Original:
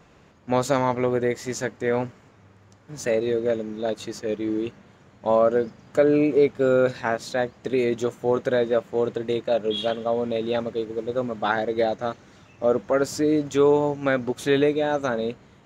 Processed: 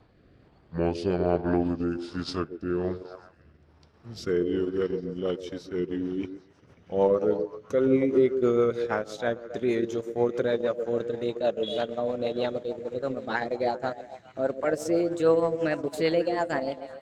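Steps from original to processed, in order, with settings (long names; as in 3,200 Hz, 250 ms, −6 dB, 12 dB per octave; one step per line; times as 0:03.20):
gliding playback speed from 65% → 119%
echo through a band-pass that steps 134 ms, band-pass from 380 Hz, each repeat 0.7 octaves, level −6 dB
transient designer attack −2 dB, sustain −7 dB
rotating-speaker cabinet horn 1.2 Hz, later 6.3 Hz, at 0:04.91
level −1.5 dB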